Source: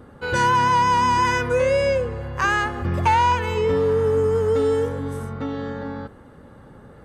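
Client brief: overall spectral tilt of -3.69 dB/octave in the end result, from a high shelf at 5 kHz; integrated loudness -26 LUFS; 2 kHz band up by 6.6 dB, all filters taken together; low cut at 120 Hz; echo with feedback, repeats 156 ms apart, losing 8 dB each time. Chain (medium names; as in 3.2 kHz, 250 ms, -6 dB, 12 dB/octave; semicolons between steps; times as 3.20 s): high-pass 120 Hz; peaking EQ 2 kHz +8 dB; treble shelf 5 kHz +7.5 dB; feedback delay 156 ms, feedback 40%, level -8 dB; trim -9 dB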